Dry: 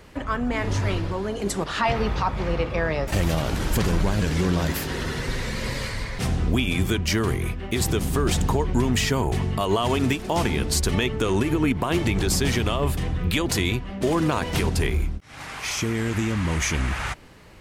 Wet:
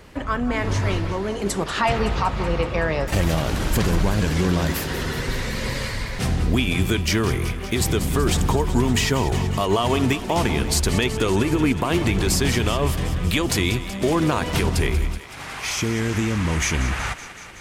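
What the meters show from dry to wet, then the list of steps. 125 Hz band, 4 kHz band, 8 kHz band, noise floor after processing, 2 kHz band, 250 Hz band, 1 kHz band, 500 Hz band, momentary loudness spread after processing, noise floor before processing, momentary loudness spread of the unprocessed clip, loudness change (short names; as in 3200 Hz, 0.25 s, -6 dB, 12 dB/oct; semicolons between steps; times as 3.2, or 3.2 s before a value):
+2.0 dB, +2.5 dB, +2.5 dB, -34 dBFS, +2.5 dB, +2.0 dB, +2.5 dB, +2.0 dB, 6 LU, -37 dBFS, 6 LU, +2.0 dB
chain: thinning echo 0.188 s, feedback 76%, level -13 dB; gain +2 dB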